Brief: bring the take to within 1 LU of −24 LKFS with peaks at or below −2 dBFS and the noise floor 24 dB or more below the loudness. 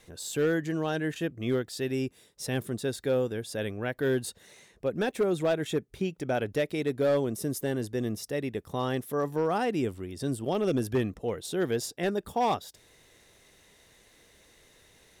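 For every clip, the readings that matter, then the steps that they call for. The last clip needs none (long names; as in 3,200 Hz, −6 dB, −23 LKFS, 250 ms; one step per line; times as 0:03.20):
share of clipped samples 0.8%; peaks flattened at −20.0 dBFS; integrated loudness −30.5 LKFS; sample peak −20.0 dBFS; target loudness −24.0 LKFS
→ clipped peaks rebuilt −20 dBFS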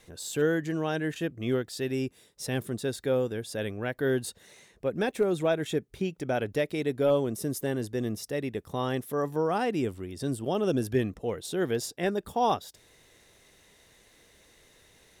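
share of clipped samples 0.0%; integrated loudness −30.0 LKFS; sample peak −14.0 dBFS; target loudness −24.0 LKFS
→ level +6 dB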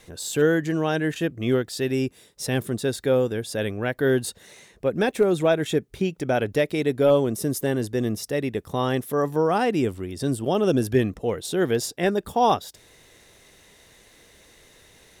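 integrated loudness −24.0 LKFS; sample peak −8.0 dBFS; background noise floor −55 dBFS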